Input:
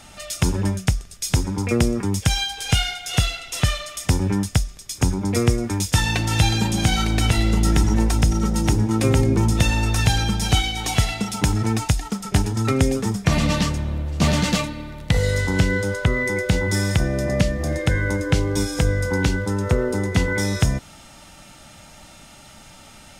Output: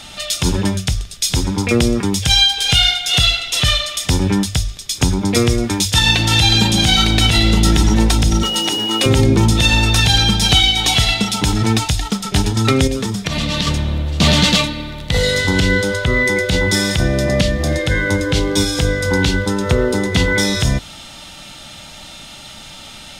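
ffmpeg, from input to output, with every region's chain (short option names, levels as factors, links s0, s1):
-filter_complex "[0:a]asettb=1/sr,asplit=3[s0][s1][s2];[s0]atrim=end=8.434[s3];[s1]atrim=start=8.43:end=9.06,asetpts=PTS-STARTPTS,afade=t=in:d=0.004:c=qsin,afade=t=out:st=0.626:d=0.004:c=qsin,highpass=390,acrusher=bits=8:dc=4:mix=0:aa=0.000001,aeval=exprs='val(0)+0.0282*sin(2*PI*2900*n/s)':c=same[s4];[s2]atrim=start=9.056[s5];[s3][s4]acrossfade=d=0.004:c1=hsin:c2=qsin[s6];[s6][s5]acrossfade=d=0.004:c1=qsin:c2=hsin,asettb=1/sr,asplit=3[s7][s8][s9];[s7]atrim=end=12.874[s10];[s8]atrim=start=12.87:end=13.67,asetpts=PTS-STARTPTS,afade=t=in:d=0.004:c=qsin,afade=t=out:st=0.796:d=0.004:c=qsin,bandreject=f=790:w=18,acompressor=threshold=0.0794:ratio=10:attack=3.2:release=140:knee=1:detection=peak[s11];[s9]atrim=start=13.666[s12];[s10][s11]acrossfade=d=0.004:c1=hsin:c2=qsin[s13];[s13][s12]acrossfade=d=0.004:c1=qsin:c2=hsin,equalizer=f=3600:w=1.6:g=10.5,bandreject=f=50:t=h:w=6,bandreject=f=100:t=h:w=6,alimiter=level_in=2.24:limit=0.891:release=50:level=0:latency=1,volume=0.891"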